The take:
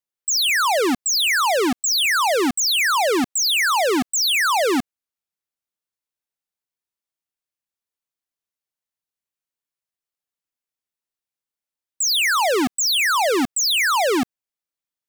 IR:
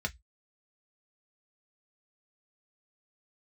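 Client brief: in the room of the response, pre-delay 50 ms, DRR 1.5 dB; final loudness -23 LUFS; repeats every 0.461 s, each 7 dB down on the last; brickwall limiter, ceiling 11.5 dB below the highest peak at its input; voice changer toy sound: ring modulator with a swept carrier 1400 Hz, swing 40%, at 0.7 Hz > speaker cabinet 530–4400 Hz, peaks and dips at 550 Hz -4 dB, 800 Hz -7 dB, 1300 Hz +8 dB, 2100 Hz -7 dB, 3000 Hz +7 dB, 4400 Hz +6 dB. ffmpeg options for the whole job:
-filter_complex "[0:a]alimiter=level_in=5.5dB:limit=-24dB:level=0:latency=1,volume=-5.5dB,aecho=1:1:461|922|1383|1844|2305:0.447|0.201|0.0905|0.0407|0.0183,asplit=2[a][b];[1:a]atrim=start_sample=2205,adelay=50[c];[b][c]afir=irnorm=-1:irlink=0,volume=-5.5dB[d];[a][d]amix=inputs=2:normalize=0,aeval=exprs='val(0)*sin(2*PI*1400*n/s+1400*0.4/0.7*sin(2*PI*0.7*n/s))':c=same,highpass=530,equalizer=f=550:t=q:w=4:g=-4,equalizer=f=800:t=q:w=4:g=-7,equalizer=f=1.3k:t=q:w=4:g=8,equalizer=f=2.1k:t=q:w=4:g=-7,equalizer=f=3k:t=q:w=4:g=7,equalizer=f=4.4k:t=q:w=4:g=6,lowpass=f=4.4k:w=0.5412,lowpass=f=4.4k:w=1.3066,volume=5.5dB"

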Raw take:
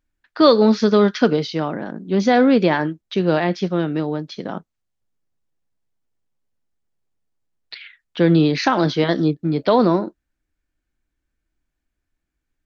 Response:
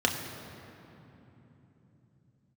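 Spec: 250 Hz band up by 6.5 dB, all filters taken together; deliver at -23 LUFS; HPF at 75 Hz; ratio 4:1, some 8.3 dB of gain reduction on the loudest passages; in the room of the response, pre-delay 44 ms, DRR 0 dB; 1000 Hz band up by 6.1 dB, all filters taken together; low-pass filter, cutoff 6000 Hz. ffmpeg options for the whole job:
-filter_complex "[0:a]highpass=75,lowpass=6k,equalizer=f=250:t=o:g=8,equalizer=f=1k:t=o:g=7.5,acompressor=threshold=-14dB:ratio=4,asplit=2[a][b];[1:a]atrim=start_sample=2205,adelay=44[c];[b][c]afir=irnorm=-1:irlink=0,volume=-11.5dB[d];[a][d]amix=inputs=2:normalize=0,volume=-8dB"

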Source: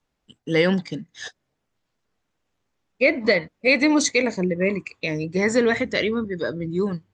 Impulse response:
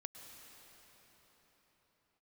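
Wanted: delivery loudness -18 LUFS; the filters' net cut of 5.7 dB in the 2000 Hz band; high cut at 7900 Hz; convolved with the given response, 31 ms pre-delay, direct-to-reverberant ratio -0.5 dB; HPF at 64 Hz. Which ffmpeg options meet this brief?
-filter_complex "[0:a]highpass=64,lowpass=7.9k,equalizer=f=2k:t=o:g=-6.5,asplit=2[a][b];[1:a]atrim=start_sample=2205,adelay=31[c];[b][c]afir=irnorm=-1:irlink=0,volume=4.5dB[d];[a][d]amix=inputs=2:normalize=0,volume=2.5dB"

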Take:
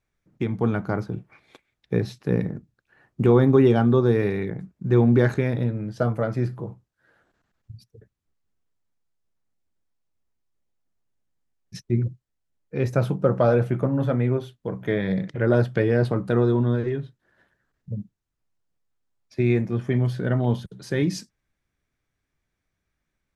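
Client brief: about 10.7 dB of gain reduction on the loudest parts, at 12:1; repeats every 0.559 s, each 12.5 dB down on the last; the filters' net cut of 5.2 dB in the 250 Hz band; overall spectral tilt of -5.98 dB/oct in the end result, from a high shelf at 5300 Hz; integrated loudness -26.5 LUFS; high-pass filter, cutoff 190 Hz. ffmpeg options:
-af "highpass=190,equalizer=f=250:t=o:g=-5,highshelf=f=5.3k:g=5,acompressor=threshold=-26dB:ratio=12,aecho=1:1:559|1118|1677:0.237|0.0569|0.0137,volume=6.5dB"

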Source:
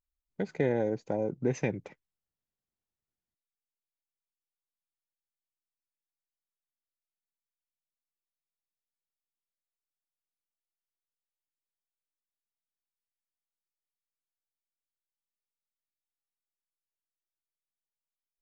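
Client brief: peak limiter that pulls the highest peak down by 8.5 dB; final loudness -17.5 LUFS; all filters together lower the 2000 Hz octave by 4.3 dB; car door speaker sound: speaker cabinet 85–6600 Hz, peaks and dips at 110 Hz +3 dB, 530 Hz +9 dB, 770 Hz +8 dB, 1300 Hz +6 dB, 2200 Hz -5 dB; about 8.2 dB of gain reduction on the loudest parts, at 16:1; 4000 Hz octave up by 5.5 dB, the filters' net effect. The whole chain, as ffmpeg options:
-af "equalizer=f=2k:t=o:g=-6.5,equalizer=f=4k:t=o:g=9,acompressor=threshold=-30dB:ratio=16,alimiter=level_in=3.5dB:limit=-24dB:level=0:latency=1,volume=-3.5dB,highpass=85,equalizer=f=110:t=q:w=4:g=3,equalizer=f=530:t=q:w=4:g=9,equalizer=f=770:t=q:w=4:g=8,equalizer=f=1.3k:t=q:w=4:g=6,equalizer=f=2.2k:t=q:w=4:g=-5,lowpass=f=6.6k:w=0.5412,lowpass=f=6.6k:w=1.3066,volume=18dB"

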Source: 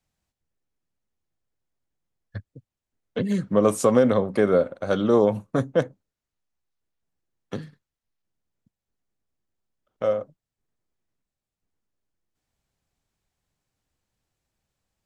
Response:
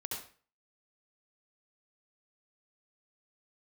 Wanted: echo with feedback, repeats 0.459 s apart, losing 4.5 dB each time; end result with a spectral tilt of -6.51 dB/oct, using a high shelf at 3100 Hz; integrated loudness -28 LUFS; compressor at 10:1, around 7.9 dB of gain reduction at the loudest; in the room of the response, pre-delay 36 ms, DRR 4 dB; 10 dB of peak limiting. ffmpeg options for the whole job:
-filter_complex "[0:a]highshelf=f=3.1k:g=-3,acompressor=threshold=-21dB:ratio=10,alimiter=limit=-21.5dB:level=0:latency=1,aecho=1:1:459|918|1377|1836|2295|2754|3213|3672|4131:0.596|0.357|0.214|0.129|0.0772|0.0463|0.0278|0.0167|0.01,asplit=2[a][b];[1:a]atrim=start_sample=2205,adelay=36[c];[b][c]afir=irnorm=-1:irlink=0,volume=-4.5dB[d];[a][d]amix=inputs=2:normalize=0,volume=4dB"

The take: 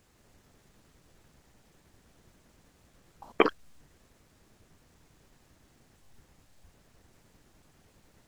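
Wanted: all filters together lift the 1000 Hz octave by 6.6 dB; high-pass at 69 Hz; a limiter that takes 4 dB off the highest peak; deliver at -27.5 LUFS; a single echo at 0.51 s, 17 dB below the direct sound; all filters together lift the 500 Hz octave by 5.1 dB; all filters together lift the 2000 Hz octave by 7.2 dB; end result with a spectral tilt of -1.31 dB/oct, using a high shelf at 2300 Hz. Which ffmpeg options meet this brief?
-af "highpass=69,equalizer=f=500:t=o:g=5,equalizer=f=1k:t=o:g=4.5,equalizer=f=2k:t=o:g=5,highshelf=f=2.3k:g=4.5,alimiter=limit=-2.5dB:level=0:latency=1,aecho=1:1:510:0.141,volume=-0.5dB"

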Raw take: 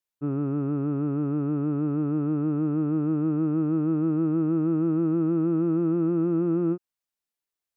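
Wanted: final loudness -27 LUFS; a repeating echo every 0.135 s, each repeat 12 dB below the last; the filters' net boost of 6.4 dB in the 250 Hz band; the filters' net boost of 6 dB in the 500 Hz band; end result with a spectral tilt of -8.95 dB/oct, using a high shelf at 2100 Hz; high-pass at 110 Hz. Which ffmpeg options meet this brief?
-af "highpass=110,equalizer=f=250:t=o:g=7.5,equalizer=f=500:t=o:g=4.5,highshelf=f=2.1k:g=-5.5,aecho=1:1:135|270|405:0.251|0.0628|0.0157,volume=-8dB"

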